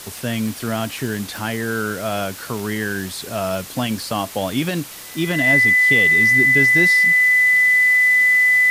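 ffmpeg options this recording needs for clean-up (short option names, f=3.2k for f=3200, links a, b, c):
-af "adeclick=t=4,bandreject=f=2k:w=30,afwtdn=0.018"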